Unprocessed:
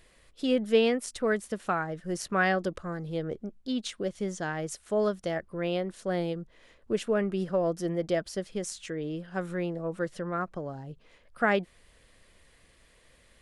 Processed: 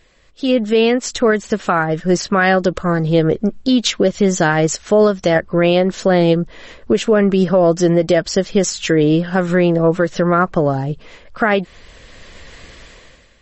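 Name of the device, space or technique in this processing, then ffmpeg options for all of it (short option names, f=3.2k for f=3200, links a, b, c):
low-bitrate web radio: -af "dynaudnorm=f=160:g=7:m=16dB,alimiter=limit=-11dB:level=0:latency=1:release=195,volume=6.5dB" -ar 32000 -c:a libmp3lame -b:a 32k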